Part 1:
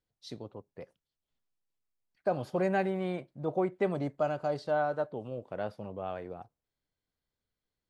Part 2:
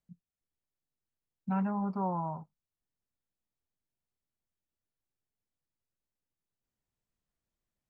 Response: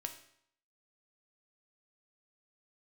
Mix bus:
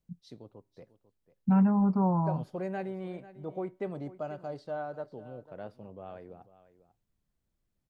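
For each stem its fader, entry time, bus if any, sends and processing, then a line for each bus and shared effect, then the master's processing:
-10.5 dB, 0.00 s, send -17 dB, echo send -15.5 dB, bass shelf 220 Hz -7.5 dB
0.0 dB, 0.00 s, no send, no echo send, none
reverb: on, RT60 0.70 s, pre-delay 3 ms
echo: delay 495 ms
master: bass shelf 390 Hz +11 dB

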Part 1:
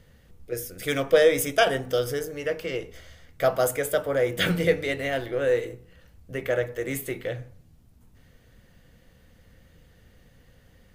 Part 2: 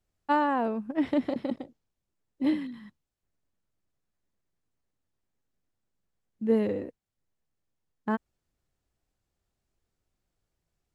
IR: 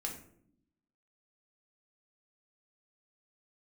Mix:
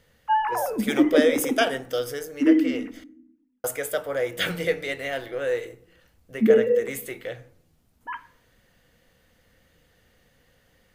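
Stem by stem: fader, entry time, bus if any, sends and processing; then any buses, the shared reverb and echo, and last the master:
-1.5 dB, 0.00 s, muted 3.04–3.64 s, send -16 dB, bass shelf 260 Hz -10.5 dB
+2.0 dB, 0.00 s, send -4.5 dB, formants replaced by sine waves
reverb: on, RT60 0.65 s, pre-delay 4 ms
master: none

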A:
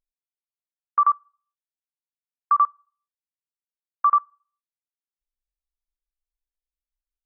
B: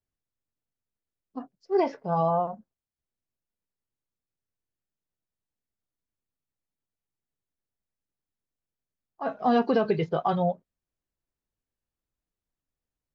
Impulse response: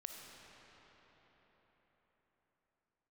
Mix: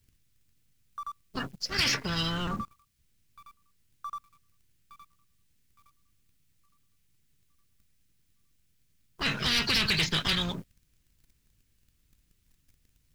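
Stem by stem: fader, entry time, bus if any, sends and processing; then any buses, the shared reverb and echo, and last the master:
-15.0 dB, 0.00 s, no send, echo send -11 dB, none
+1.0 dB, 0.00 s, no send, no echo send, spectrum-flattening compressor 10:1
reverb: none
echo: feedback delay 864 ms, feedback 41%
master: FFT filter 140 Hz 0 dB, 750 Hz -19 dB, 2.3 kHz -4 dB; waveshaping leveller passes 2

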